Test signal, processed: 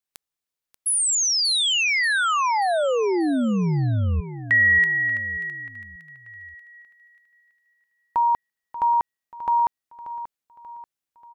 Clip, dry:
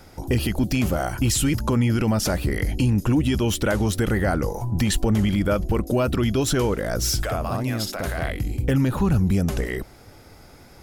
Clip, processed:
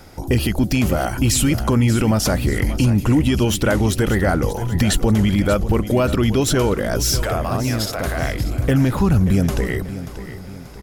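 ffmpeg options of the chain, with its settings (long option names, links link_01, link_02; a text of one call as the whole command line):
ffmpeg -i in.wav -af "aecho=1:1:585|1170|1755|2340:0.224|0.0985|0.0433|0.0191,volume=4dB" out.wav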